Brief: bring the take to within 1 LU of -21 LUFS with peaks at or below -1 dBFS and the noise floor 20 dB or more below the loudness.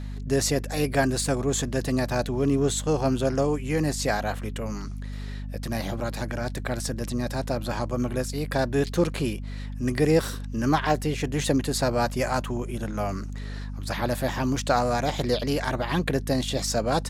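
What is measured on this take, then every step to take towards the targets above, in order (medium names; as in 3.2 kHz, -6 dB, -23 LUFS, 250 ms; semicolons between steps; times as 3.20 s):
tick rate 19 per s; hum 50 Hz; highest harmonic 250 Hz; hum level -31 dBFS; loudness -26.5 LUFS; peak level -7.5 dBFS; loudness target -21.0 LUFS
-> de-click; hum notches 50/100/150/200/250 Hz; trim +5.5 dB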